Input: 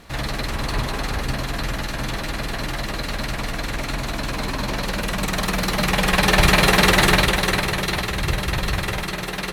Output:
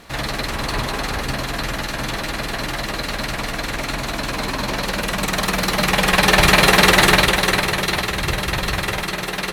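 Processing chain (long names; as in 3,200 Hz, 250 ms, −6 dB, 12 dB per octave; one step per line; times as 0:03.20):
low-shelf EQ 170 Hz −6.5 dB
level +3.5 dB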